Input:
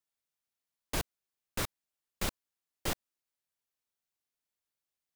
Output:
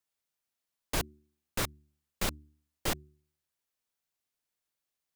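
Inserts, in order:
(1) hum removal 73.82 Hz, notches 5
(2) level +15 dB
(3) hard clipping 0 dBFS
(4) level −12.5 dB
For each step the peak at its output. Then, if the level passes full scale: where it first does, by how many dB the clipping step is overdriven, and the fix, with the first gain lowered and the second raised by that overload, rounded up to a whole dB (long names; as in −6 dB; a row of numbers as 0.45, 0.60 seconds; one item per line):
−18.5, −3.5, −3.5, −16.0 dBFS
no step passes full scale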